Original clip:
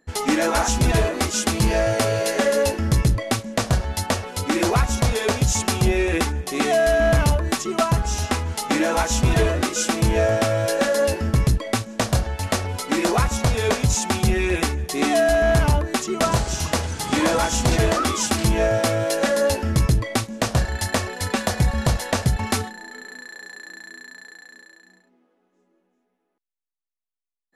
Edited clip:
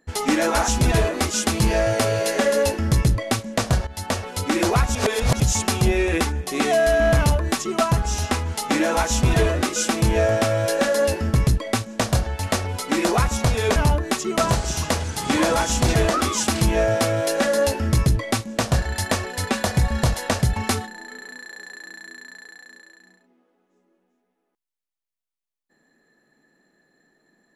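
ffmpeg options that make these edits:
ffmpeg -i in.wav -filter_complex "[0:a]asplit=5[link_01][link_02][link_03][link_04][link_05];[link_01]atrim=end=3.87,asetpts=PTS-STARTPTS,afade=type=out:start_time=3.866:duration=0.004:curve=hsin:silence=0.16788[link_06];[link_02]atrim=start=3.87:end=4.952,asetpts=PTS-STARTPTS,afade=type=in:duration=0.45:curve=qsin:silence=0.16788[link_07];[link_03]atrim=start=4.948:end=5.402,asetpts=PTS-STARTPTS,areverse[link_08];[link_04]atrim=start=5.398:end=13.762[link_09];[link_05]atrim=start=15.588[link_10];[link_06][link_07]concat=n=2:v=0:a=1[link_11];[link_11][link_08]acrossfade=duration=0.004:curve1=hsin:curve2=hsin[link_12];[link_12][link_09]acrossfade=duration=0.004:curve1=hsin:curve2=hsin[link_13];[link_13][link_10]acrossfade=duration=0.004:curve1=hsin:curve2=hsin" out.wav

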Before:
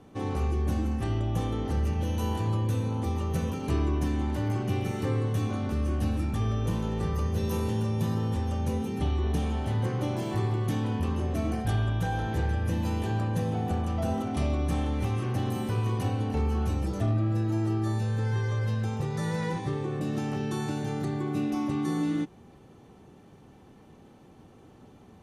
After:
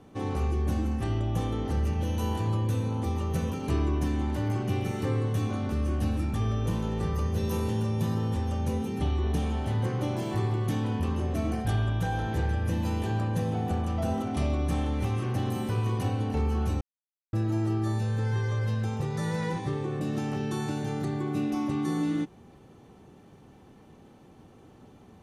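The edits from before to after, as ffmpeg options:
ffmpeg -i in.wav -filter_complex "[0:a]asplit=3[link_01][link_02][link_03];[link_01]atrim=end=16.81,asetpts=PTS-STARTPTS,afade=type=out:start_time=16.806:duration=0.004:curve=hsin[link_04];[link_02]atrim=start=16.81:end=17.33,asetpts=PTS-STARTPTS,volume=0[link_05];[link_03]atrim=start=17.33,asetpts=PTS-STARTPTS,afade=type=in:duration=0.004:curve=hsin[link_06];[link_04][link_05][link_06]concat=n=3:v=0:a=1" out.wav

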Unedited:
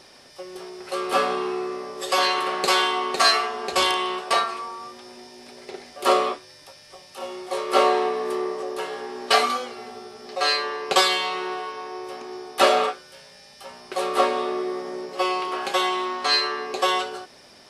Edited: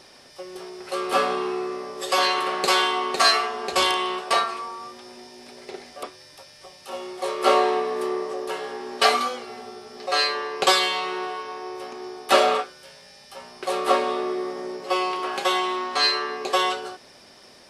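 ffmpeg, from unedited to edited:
ffmpeg -i in.wav -filter_complex "[0:a]asplit=2[link_01][link_02];[link_01]atrim=end=6.032[link_03];[link_02]atrim=start=6.318[link_04];[link_03][link_04]acrossfade=duration=0.004:curve1=hsin:curve2=hsin" out.wav

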